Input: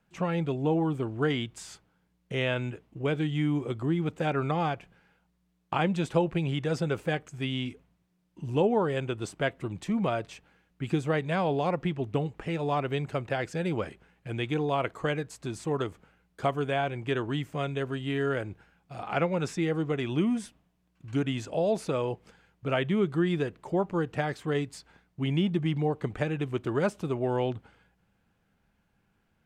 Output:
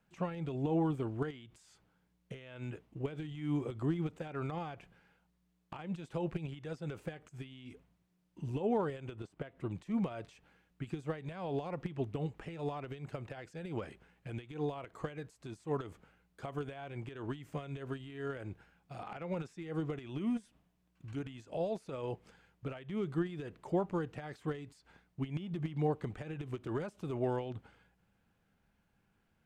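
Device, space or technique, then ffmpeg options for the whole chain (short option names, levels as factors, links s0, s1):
de-esser from a sidechain: -filter_complex "[0:a]asplit=2[s0][s1];[s1]highpass=5100,apad=whole_len=1298753[s2];[s0][s2]sidechaincompress=threshold=0.00126:ratio=16:attack=1.4:release=80,asettb=1/sr,asplit=3[s3][s4][s5];[s3]atrim=end=9.154[s6];[s4]atrim=start=9.15:end=9.71,asetpts=PTS-STARTPTS,afade=t=in:d=0.004:c=qsin,afade=t=out:st=0.556:d=0.004:c=qsin,highshelf=f=3600:g=-8.5[s7];[s5]atrim=start=9.706[s8];[s6][s7]acrossfade=d=0.004:c1=hsin:c2=qsin[s9];[s9][s8]acrossfade=d=0.004:c1=qsin:c2=hsin,volume=0.668"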